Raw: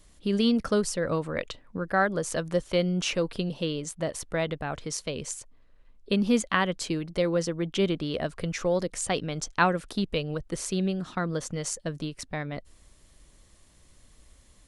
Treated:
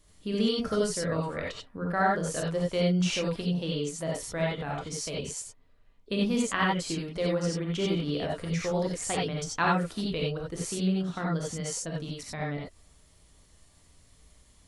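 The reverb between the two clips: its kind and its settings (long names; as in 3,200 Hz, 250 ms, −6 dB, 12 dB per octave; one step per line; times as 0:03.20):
reverb whose tail is shaped and stops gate 110 ms rising, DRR −3 dB
level −6 dB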